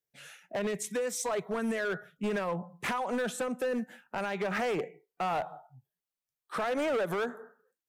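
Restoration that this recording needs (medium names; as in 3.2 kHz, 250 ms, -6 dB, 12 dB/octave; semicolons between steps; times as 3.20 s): clip repair -27 dBFS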